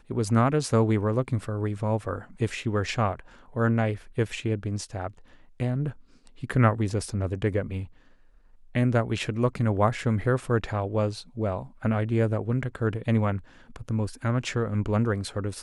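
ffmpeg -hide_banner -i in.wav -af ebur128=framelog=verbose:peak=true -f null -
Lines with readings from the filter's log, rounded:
Integrated loudness:
  I:         -27.2 LUFS
  Threshold: -37.6 LUFS
Loudness range:
  LRA:         2.6 LU
  Threshold: -47.9 LUFS
  LRA low:   -29.1 LUFS
  LRA high:  -26.5 LUFS
True peak:
  Peak:       -7.8 dBFS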